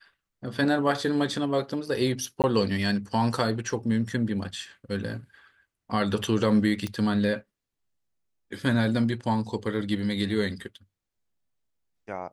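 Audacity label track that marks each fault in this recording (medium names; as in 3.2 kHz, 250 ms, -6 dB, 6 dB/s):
2.420000	2.440000	dropout 18 ms
6.870000	6.870000	pop -18 dBFS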